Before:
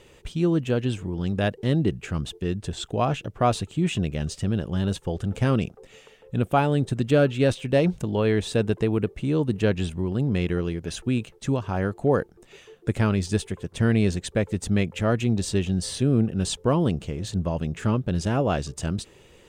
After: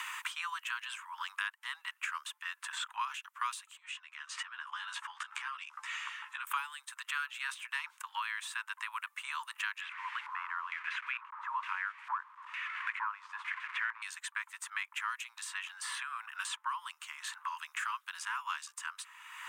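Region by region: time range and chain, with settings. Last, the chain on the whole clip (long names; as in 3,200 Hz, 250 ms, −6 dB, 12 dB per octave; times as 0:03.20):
0:03.77–0:06.47: low-pass filter 6,400 Hz + double-tracking delay 14 ms −4.5 dB + downward compressor, threshold −36 dBFS
0:09.81–0:14.02: linear delta modulator 64 kbit/s, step −39.5 dBFS + auto-filter low-pass square 1.1 Hz 990–2,200 Hz + notch filter 640 Hz, Q 7.2
whole clip: Butterworth high-pass 970 Hz 96 dB per octave; parametric band 4,500 Hz −11.5 dB 1.6 octaves; multiband upward and downward compressor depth 100%; level +1 dB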